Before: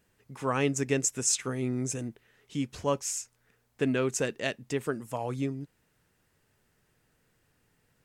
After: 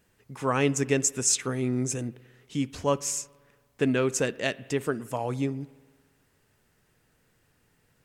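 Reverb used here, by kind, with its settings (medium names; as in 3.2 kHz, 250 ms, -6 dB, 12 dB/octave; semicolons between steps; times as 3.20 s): spring tank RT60 1.5 s, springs 56 ms, chirp 65 ms, DRR 20 dB; trim +3 dB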